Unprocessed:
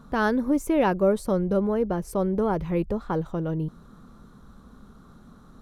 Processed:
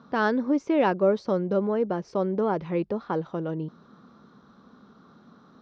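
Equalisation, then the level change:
high-pass filter 200 Hz 12 dB per octave
Butterworth low-pass 5,700 Hz 48 dB per octave
0.0 dB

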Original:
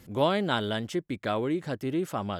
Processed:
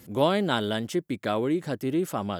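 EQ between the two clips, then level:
high-pass filter 260 Hz 6 dB per octave
low-shelf EQ 380 Hz +9 dB
high-shelf EQ 7,700 Hz +10 dB
0.0 dB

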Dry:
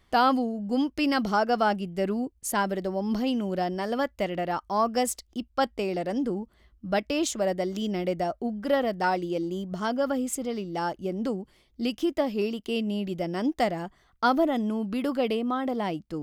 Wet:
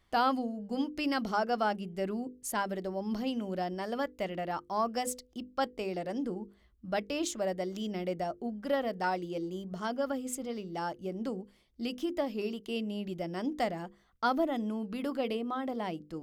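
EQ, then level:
mains-hum notches 50/100/150/200/250/300/350/400/450/500 Hz
−6.0 dB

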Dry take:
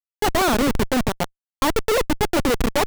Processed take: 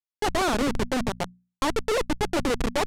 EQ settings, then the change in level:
low-pass filter 9,800 Hz 12 dB per octave
mains-hum notches 60/120/180/240 Hz
−5.0 dB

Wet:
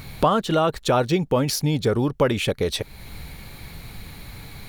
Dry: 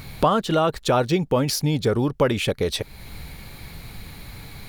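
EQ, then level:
notch filter 4,900 Hz, Q 27
0.0 dB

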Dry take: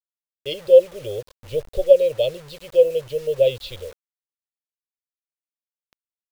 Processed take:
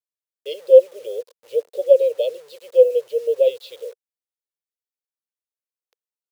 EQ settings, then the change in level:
high-pass with resonance 470 Hz, resonance Q 4.9
high-shelf EQ 2,600 Hz +7.5 dB
−10.5 dB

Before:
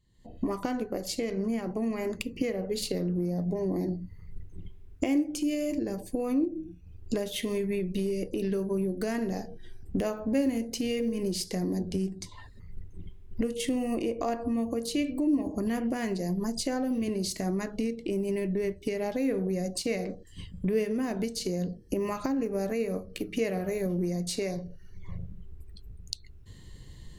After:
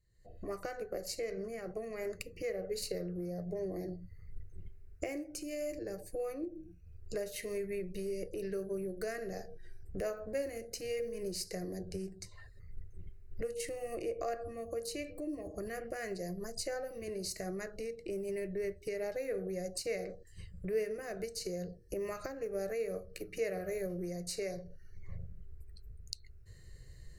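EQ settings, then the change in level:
parametric band 3,900 Hz +9 dB 0.6 octaves
phaser with its sweep stopped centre 930 Hz, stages 6
−4.0 dB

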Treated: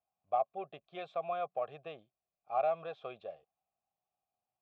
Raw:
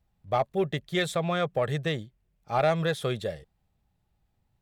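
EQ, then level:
formant filter a
low-pass filter 5,400 Hz
high-frequency loss of the air 84 metres
0.0 dB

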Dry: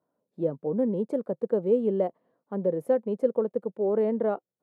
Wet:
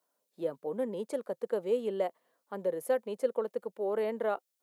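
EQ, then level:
high-pass filter 1,300 Hz 6 dB per octave
high-shelf EQ 2,500 Hz +11 dB
+3.0 dB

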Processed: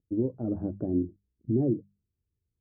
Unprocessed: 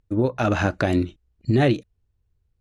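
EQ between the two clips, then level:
high-pass filter 130 Hz 6 dB per octave
transistor ladder low-pass 450 Hz, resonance 25%
mains-hum notches 50/100/150/200 Hz
0.0 dB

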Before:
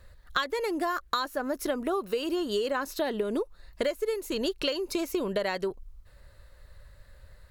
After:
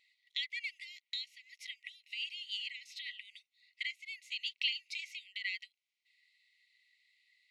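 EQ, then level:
dynamic equaliser 2,600 Hz, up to +3 dB, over −47 dBFS, Q 1.5
linear-phase brick-wall high-pass 1,900 Hz
head-to-tape spacing loss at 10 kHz 29 dB
+6.5 dB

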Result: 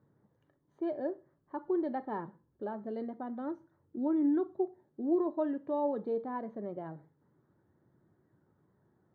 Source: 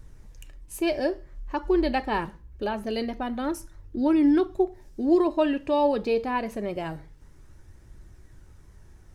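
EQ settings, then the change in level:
moving average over 17 samples
high-pass filter 140 Hz 24 dB per octave
high-frequency loss of the air 220 metres
−8.0 dB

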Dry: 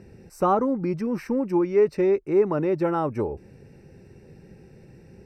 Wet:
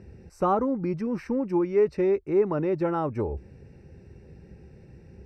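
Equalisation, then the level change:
high-frequency loss of the air 51 metres
parametric band 66 Hz +11.5 dB 0.88 octaves
−2.5 dB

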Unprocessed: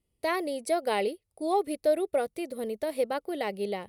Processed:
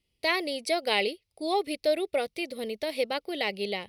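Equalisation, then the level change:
flat-topped bell 3,400 Hz +11.5 dB
−1.0 dB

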